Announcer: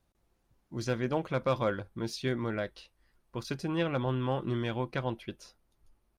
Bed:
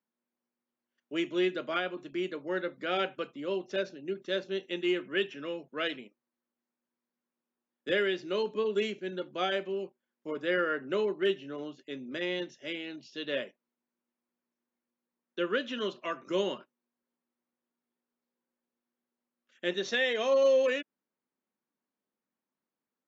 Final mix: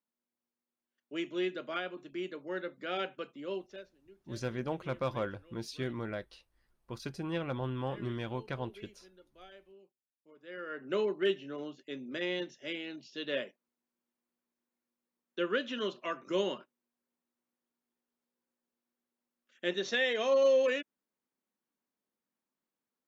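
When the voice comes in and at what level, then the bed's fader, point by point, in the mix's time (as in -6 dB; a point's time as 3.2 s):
3.55 s, -5.0 dB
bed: 3.58 s -5 dB
3.93 s -23.5 dB
10.35 s -23.5 dB
10.94 s -1.5 dB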